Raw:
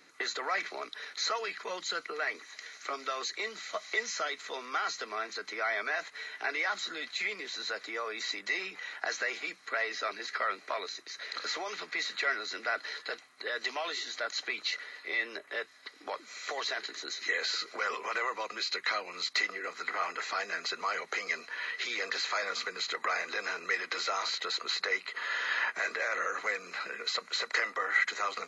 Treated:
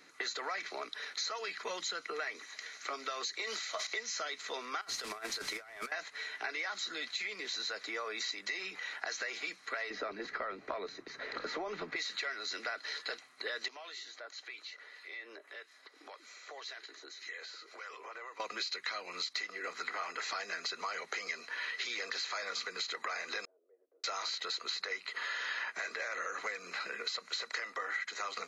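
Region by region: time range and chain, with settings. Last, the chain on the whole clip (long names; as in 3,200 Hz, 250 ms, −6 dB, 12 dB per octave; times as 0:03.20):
0:01.66–0:02.46: notch filter 4,500 Hz, Q 14 + multiband upward and downward compressor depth 40%
0:03.42–0:03.87: Bessel high-pass filter 390 Hz + level that may fall only so fast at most 39 dB per second
0:04.81–0:05.92: linear delta modulator 64 kbit/s, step −42.5 dBFS + compressor whose output falls as the input rises −40 dBFS, ratio −0.5
0:09.90–0:11.96: spectral tilt −4.5 dB per octave + multiband upward and downward compressor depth 40%
0:13.68–0:18.40: high-pass filter 280 Hz 24 dB per octave + downward compressor 2 to 1, threshold −50 dBFS + two-band tremolo in antiphase 1.8 Hz, depth 50%, crossover 1,400 Hz
0:23.45–0:24.04: Chebyshev band-pass filter 280–620 Hz, order 3 + first difference
whole clip: dynamic equaliser 5,300 Hz, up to +5 dB, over −46 dBFS, Q 0.88; downward compressor, threshold −35 dBFS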